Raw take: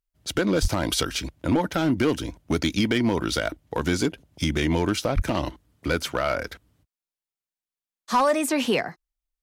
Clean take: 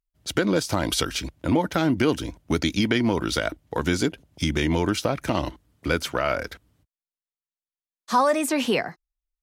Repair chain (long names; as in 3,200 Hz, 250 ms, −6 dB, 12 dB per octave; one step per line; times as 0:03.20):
clipped peaks rebuilt −14.5 dBFS
0:00.61–0:00.73: high-pass filter 140 Hz 24 dB per octave
0:05.15–0:05.27: high-pass filter 140 Hz 24 dB per octave